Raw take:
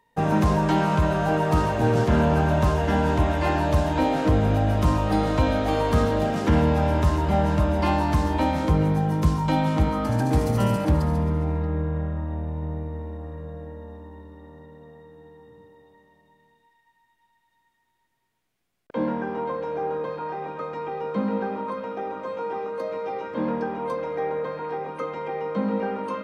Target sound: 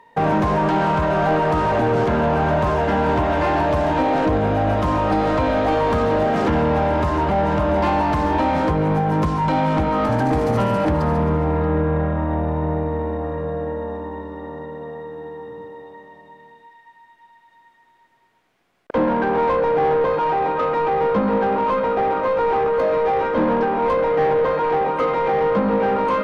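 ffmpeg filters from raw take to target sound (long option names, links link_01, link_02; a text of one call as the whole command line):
ffmpeg -i in.wav -filter_complex "[0:a]alimiter=limit=-18.5dB:level=0:latency=1:release=369,asplit=2[link_01][link_02];[link_02]highpass=frequency=720:poles=1,volume=18dB,asoftclip=type=tanh:threshold=-18.5dB[link_03];[link_01][link_03]amix=inputs=2:normalize=0,lowpass=frequency=1000:poles=1,volume=-6dB,volume=8.5dB" out.wav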